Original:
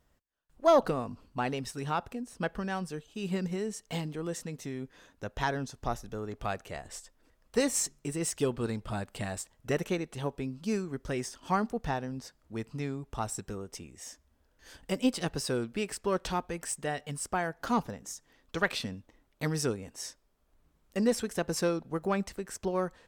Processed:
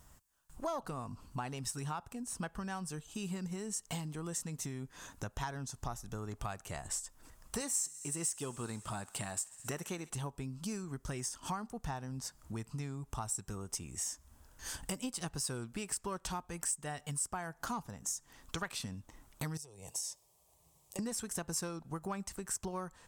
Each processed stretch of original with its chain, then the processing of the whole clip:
7.61–10.10 s: high-pass 200 Hz 6 dB/octave + thinning echo 66 ms, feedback 83%, high-pass 910 Hz, level -22 dB
19.57–20.99 s: high-pass 130 Hz + compression 8:1, threshold -43 dBFS + static phaser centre 600 Hz, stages 4
whole clip: graphic EQ 125/250/500/1000/2000/4000/8000 Hz +3/-3/-8/+4/-4/-4/+6 dB; compression 4:1, threshold -50 dBFS; treble shelf 5.2 kHz +5 dB; trim +9.5 dB

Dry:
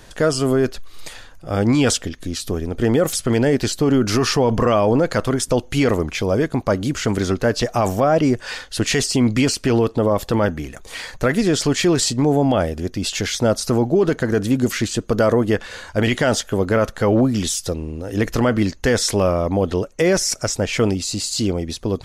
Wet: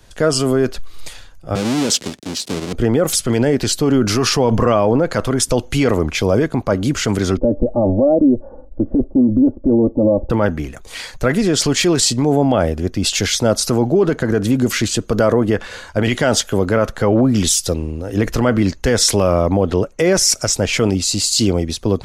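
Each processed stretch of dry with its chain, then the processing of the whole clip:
1.55–2.73 s: square wave that keeps the level + band-pass 220–7400 Hz + peaking EQ 1.2 kHz -9.5 dB 2.6 oct
7.37–10.30 s: inverse Chebyshev low-pass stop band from 2.1 kHz, stop band 60 dB + comb 3.5 ms, depth 100%
whole clip: band-stop 1.8 kHz, Q 25; loudness maximiser +11.5 dB; three bands expanded up and down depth 40%; trim -5.5 dB

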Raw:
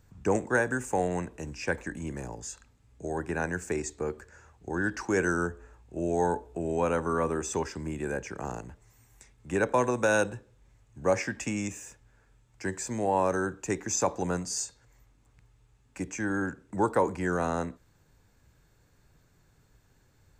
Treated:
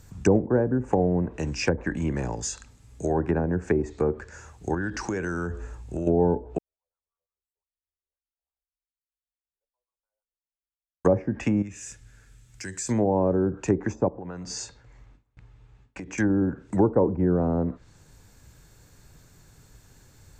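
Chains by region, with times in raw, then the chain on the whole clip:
4.74–6.07 s: compression 4:1, threshold -38 dBFS + bass shelf 240 Hz +6 dB
6.58–11.05 s: wah-wah 5.8 Hz 510–1200 Hz, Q 3.3 + inverse Chebyshev band-stop 110–6400 Hz, stop band 70 dB
11.62–12.89 s: FFT filter 130 Hz 0 dB, 990 Hz -10 dB, 1.5 kHz 0 dB + compression 2:1, threshold -50 dBFS
14.08–16.18 s: low-pass 2.8 kHz + compression 8:1, threshold -42 dBFS + gate with hold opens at -54 dBFS, closes at -59 dBFS
whole clip: low-pass that closes with the level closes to 470 Hz, closed at -26 dBFS; tone controls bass +2 dB, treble +7 dB; trim +8 dB

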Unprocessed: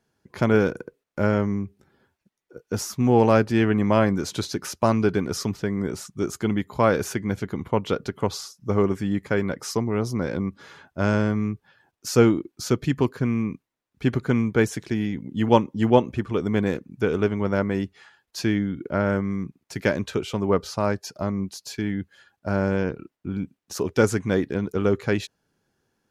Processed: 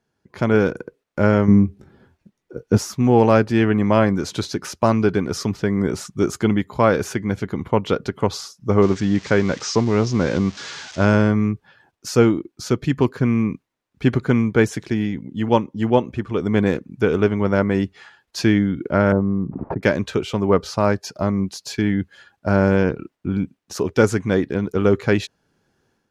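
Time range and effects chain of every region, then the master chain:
1.48–2.78 s: bass shelf 420 Hz +9.5 dB + doubling 24 ms -12 dB
8.82–11.05 s: zero-crossing glitches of -25 dBFS + steep low-pass 6.6 kHz
19.12–19.83 s: low-pass 1 kHz 24 dB/octave + swell ahead of each attack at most 27 dB/s
whole clip: treble shelf 10 kHz -10 dB; level rider gain up to 8.5 dB; trim -1 dB

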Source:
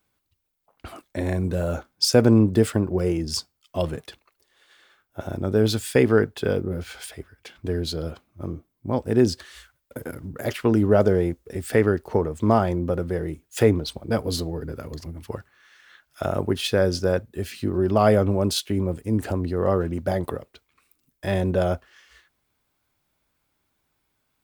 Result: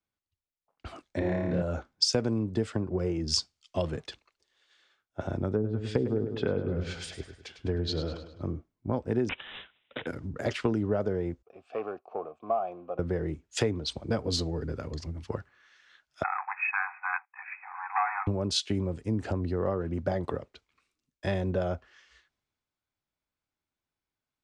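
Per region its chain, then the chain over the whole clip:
1.19–1.62 s: low-pass 3.9 kHz + flutter echo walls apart 4.8 m, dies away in 0.91 s
5.53–8.42 s: low-pass that closes with the level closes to 420 Hz, closed at -14 dBFS + feedback delay 103 ms, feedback 51%, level -9.5 dB
9.29–10.07 s: tilt EQ +2.5 dB/octave + careless resampling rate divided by 6×, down none, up filtered
11.42–12.99 s: waveshaping leveller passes 1 + vowel filter a
16.23–18.27 s: waveshaping leveller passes 2 + brick-wall FIR band-pass 730–2600 Hz
whole clip: low-pass 7.2 kHz 24 dB/octave; compression 8:1, threshold -25 dBFS; three bands expanded up and down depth 40%

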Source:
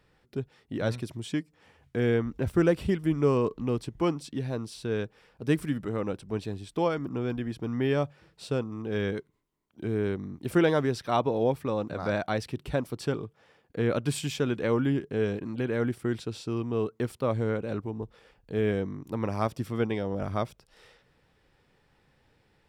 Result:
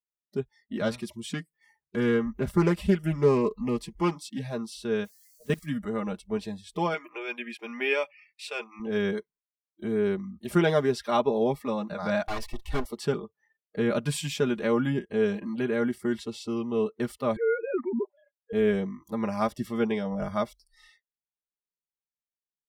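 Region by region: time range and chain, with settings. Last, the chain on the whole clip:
0.77–4.54 s: treble shelf 8.3 kHz +4.5 dB + loudspeaker Doppler distortion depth 0.18 ms
5.04–5.65 s: treble shelf 5.3 kHz -2 dB + level held to a coarse grid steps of 22 dB + added noise white -60 dBFS
6.94–8.80 s: high-pass 580 Hz 6 dB/octave + peaking EQ 2.4 kHz +14 dB 0.48 oct
12.28–12.85 s: comb filter that takes the minimum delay 2.7 ms + bass shelf 130 Hz +6.5 dB
17.36–18.53 s: formants replaced by sine waves + peaking EQ 240 Hz +3 dB 1.3 oct
whole clip: gate -59 dBFS, range -17 dB; spectral noise reduction 30 dB; comb 4.9 ms, depth 71%

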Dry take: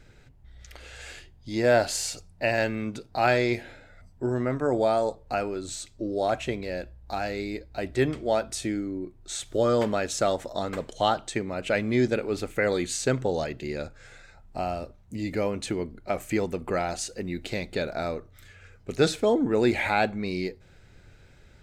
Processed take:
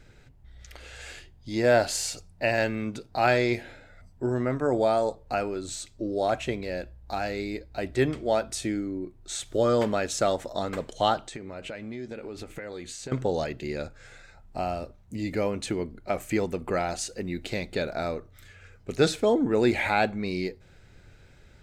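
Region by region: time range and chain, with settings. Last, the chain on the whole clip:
11.27–13.12 s: compression 8:1, threshold -34 dBFS + treble shelf 8 kHz -6 dB + doubling 13 ms -12.5 dB
whole clip: none

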